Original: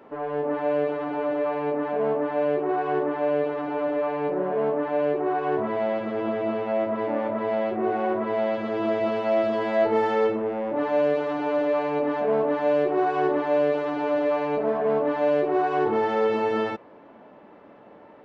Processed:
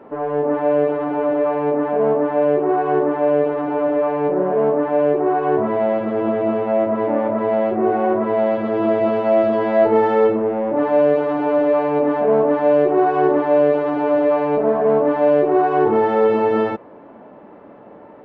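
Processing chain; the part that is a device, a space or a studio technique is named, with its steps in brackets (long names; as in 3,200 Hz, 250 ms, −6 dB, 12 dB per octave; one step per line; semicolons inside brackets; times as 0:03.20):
through cloth (high-shelf EQ 2,500 Hz −14.5 dB)
level +8 dB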